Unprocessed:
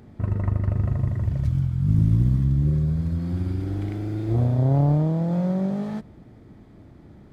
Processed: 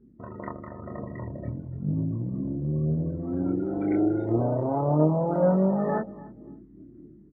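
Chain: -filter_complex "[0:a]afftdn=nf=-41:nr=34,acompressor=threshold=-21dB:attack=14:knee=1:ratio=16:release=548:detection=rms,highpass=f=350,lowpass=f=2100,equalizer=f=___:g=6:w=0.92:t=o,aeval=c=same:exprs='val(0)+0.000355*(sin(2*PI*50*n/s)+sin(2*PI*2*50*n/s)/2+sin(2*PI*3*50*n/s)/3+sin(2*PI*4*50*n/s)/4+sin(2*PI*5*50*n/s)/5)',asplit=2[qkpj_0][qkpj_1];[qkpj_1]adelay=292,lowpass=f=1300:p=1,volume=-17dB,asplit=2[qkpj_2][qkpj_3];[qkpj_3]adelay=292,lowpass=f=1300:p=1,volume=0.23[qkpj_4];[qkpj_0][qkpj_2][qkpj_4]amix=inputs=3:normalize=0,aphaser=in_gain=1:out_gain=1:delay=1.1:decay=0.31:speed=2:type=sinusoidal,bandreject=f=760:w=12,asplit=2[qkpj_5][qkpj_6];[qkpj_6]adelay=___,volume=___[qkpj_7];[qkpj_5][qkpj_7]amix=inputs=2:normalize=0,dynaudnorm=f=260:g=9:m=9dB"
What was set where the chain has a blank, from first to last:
1600, 26, -3dB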